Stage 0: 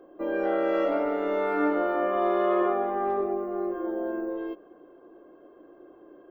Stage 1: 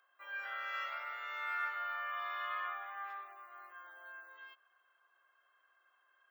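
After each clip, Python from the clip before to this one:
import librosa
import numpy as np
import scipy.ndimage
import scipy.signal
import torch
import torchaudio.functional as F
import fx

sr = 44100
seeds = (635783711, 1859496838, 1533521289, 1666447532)

y = scipy.signal.sosfilt(scipy.signal.butter(4, 1400.0, 'highpass', fs=sr, output='sos'), x)
y = y * 10.0 ** (-1.0 / 20.0)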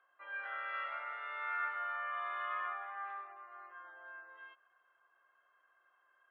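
y = fx.air_absorb(x, sr, metres=460.0)
y = y * 10.0 ** (3.5 / 20.0)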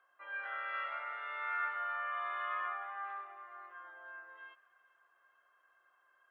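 y = fx.echo_wet_highpass(x, sr, ms=413, feedback_pct=55, hz=1800.0, wet_db=-19.5)
y = y * 10.0 ** (1.0 / 20.0)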